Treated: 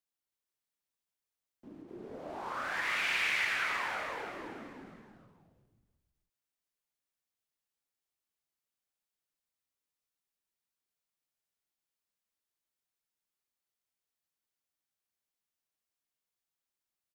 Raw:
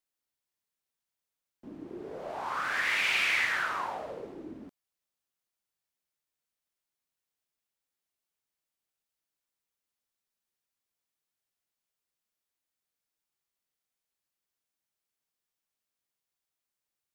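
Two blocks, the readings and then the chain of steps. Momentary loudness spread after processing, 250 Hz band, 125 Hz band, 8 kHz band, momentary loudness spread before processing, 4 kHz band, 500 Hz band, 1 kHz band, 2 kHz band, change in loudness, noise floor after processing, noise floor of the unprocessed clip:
19 LU, -3.0 dB, -2.0 dB, -3.5 dB, 19 LU, -3.5 dB, -3.5 dB, -3.5 dB, -3.5 dB, -4.0 dB, under -85 dBFS, under -85 dBFS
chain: on a send: frequency-shifting echo 320 ms, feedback 43%, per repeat -51 Hz, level -4 dB; on the sum: endings held to a fixed fall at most 110 dB/s; trim -5 dB

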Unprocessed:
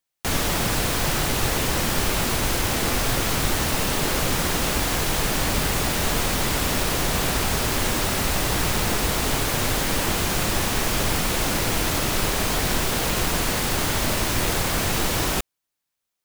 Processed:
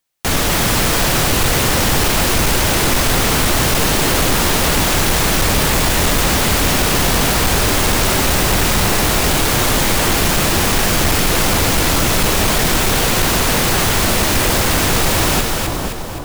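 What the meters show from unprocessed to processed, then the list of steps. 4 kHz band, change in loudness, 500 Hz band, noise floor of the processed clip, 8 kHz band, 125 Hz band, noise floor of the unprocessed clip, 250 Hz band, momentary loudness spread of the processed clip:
+8.5 dB, +8.0 dB, +8.0 dB, -19 dBFS, +8.5 dB, +8.0 dB, -82 dBFS, +8.0 dB, 0 LU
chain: two-band feedback delay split 1.2 kHz, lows 477 ms, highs 259 ms, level -4.5 dB; hard clipper -17 dBFS, distortion -15 dB; trim +7.5 dB

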